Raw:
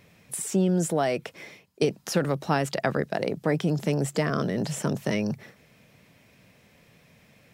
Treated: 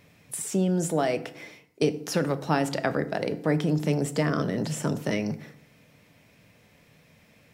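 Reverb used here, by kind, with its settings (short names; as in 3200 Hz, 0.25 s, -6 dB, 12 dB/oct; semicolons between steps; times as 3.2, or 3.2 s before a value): FDN reverb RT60 0.68 s, low-frequency decay 1.25×, high-frequency decay 0.65×, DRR 10 dB; gain -1 dB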